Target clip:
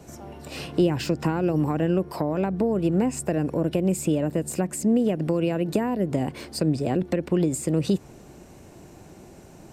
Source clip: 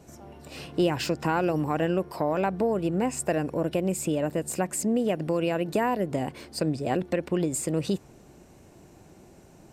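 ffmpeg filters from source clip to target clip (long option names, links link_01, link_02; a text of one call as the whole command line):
ffmpeg -i in.wav -filter_complex "[0:a]acrossover=split=390[link_01][link_02];[link_02]acompressor=threshold=-35dB:ratio=6[link_03];[link_01][link_03]amix=inputs=2:normalize=0,volume=5.5dB" out.wav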